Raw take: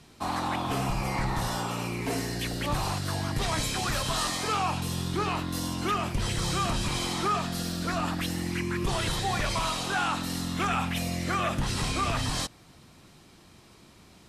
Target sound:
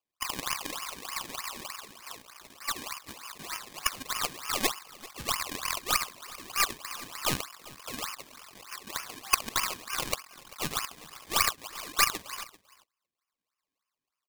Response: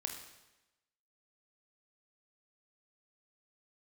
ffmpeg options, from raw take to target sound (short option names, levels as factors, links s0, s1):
-filter_complex "[0:a]afwtdn=0.0178,asettb=1/sr,asplit=3[s0][s1][s2];[s0]atrim=end=5.394[s3];[s1]atrim=start=5.39:end=5.79,asetpts=PTS-STARTPTS,afade=t=in:d=0.004:c=qsin,afade=t=out:st=0.396:d=0.004:c=qsin,asplit=2[s4][s5];[s5]highpass=f=720:p=1,volume=25.1,asoftclip=type=tanh:threshold=0.075[s6];[s4][s6]amix=inputs=2:normalize=0,lowpass=f=2400:p=1,volume=0.501[s7];[s2]atrim=start=5.786[s8];[s3][s7]acrossfade=d=0.004:c1=hsin:c2=qsin[s9];[s9][s8]acrossfade=d=0.004:c1=qsin:c2=hsin,asplit=2[s10][s11];[s11]acrusher=bits=4:mix=0:aa=0.000001,volume=1.06[s12];[s10][s12]amix=inputs=2:normalize=0,asoftclip=type=tanh:threshold=0.168,highpass=f=1100:t=q:w=9,acrusher=samples=22:mix=1:aa=0.000001:lfo=1:lforange=22:lforate=3.3,aeval=exprs='0.841*(cos(1*acos(clip(val(0)/0.841,-1,1)))-cos(1*PI/2))+0.188*(cos(3*acos(clip(val(0)/0.841,-1,1)))-cos(3*PI/2))+0.237*(cos(4*acos(clip(val(0)/0.841,-1,1)))-cos(4*PI/2))+0.106*(cos(6*acos(clip(val(0)/0.841,-1,1)))-cos(6*PI/2))':c=same,tiltshelf=f=1400:g=-8,asplit=2[s13][s14];[s14]aecho=0:1:392:0.106[s15];[s13][s15]amix=inputs=2:normalize=0,volume=0.237"